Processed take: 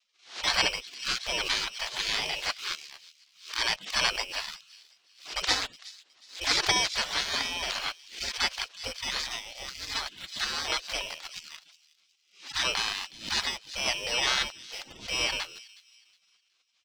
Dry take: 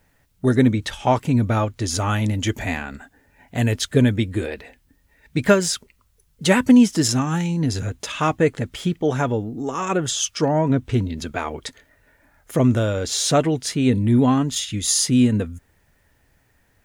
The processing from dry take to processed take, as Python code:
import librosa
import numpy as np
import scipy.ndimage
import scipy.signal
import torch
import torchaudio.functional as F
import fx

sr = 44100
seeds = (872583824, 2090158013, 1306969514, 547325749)

p1 = fx.bit_reversed(x, sr, seeds[0], block=16)
p2 = fx.spec_gate(p1, sr, threshold_db=-30, keep='weak')
p3 = scipy.signal.sosfilt(scipy.signal.butter(4, 4800.0, 'lowpass', fs=sr, output='sos'), p2)
p4 = fx.high_shelf(p3, sr, hz=3200.0, db=7.5)
p5 = np.where(np.abs(p4) >= 10.0 ** (-47.5 / 20.0), p4, 0.0)
p6 = p4 + (p5 * librosa.db_to_amplitude(-5.0))
p7 = fx.vibrato(p6, sr, rate_hz=1.1, depth_cents=27.0)
p8 = p7 + fx.echo_wet_highpass(p7, sr, ms=366, feedback_pct=31, hz=3400.0, wet_db=-17.0, dry=0)
p9 = fx.pre_swell(p8, sr, db_per_s=140.0)
y = p9 * librosa.db_to_amplitude(6.0)